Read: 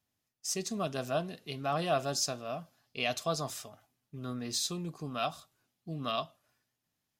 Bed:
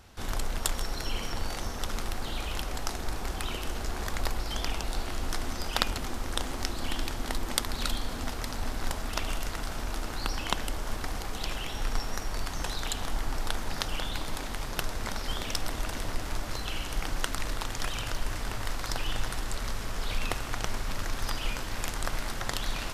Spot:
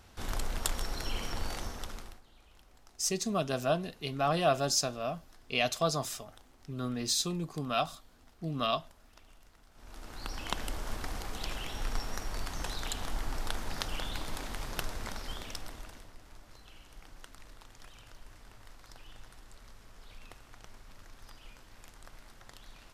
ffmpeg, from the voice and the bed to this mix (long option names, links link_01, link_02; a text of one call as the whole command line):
ffmpeg -i stem1.wav -i stem2.wav -filter_complex "[0:a]adelay=2550,volume=3dB[link_01];[1:a]volume=20dB,afade=type=out:start_time=1.53:duration=0.69:silence=0.0630957,afade=type=in:start_time=9.73:duration=0.94:silence=0.0707946,afade=type=out:start_time=14.79:duration=1.31:silence=0.149624[link_02];[link_01][link_02]amix=inputs=2:normalize=0" out.wav